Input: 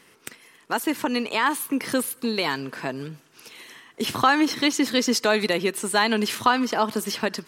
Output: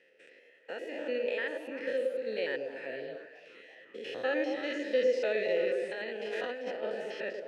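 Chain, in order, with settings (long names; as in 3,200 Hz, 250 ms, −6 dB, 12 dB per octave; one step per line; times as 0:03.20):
spectrum averaged block by block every 100 ms
formant filter e
on a send: echo through a band-pass that steps 110 ms, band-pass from 400 Hz, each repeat 0.7 octaves, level −0.5 dB
0:05.91–0:06.83: on the sum: compressor whose output falls as the input rises −41 dBFS, ratio −1
low-pass filter 9,200 Hz 12 dB per octave
feedback echo with a swinging delay time 349 ms, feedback 64%, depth 157 cents, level −22 dB
level +3.5 dB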